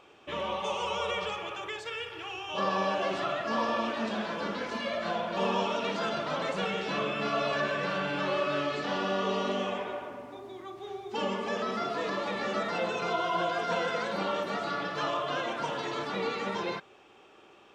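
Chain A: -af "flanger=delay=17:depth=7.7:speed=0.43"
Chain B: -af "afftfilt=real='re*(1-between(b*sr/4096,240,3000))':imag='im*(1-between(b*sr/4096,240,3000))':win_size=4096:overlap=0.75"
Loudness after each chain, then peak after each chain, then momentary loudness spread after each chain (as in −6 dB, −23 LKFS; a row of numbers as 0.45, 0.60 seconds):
−34.5, −40.0 LKFS; −20.0, −26.0 dBFS; 8, 8 LU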